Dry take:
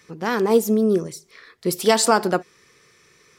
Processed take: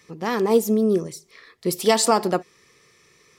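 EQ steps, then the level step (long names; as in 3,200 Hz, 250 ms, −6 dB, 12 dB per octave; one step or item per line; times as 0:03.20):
notch filter 1,500 Hz, Q 6.6
−1.0 dB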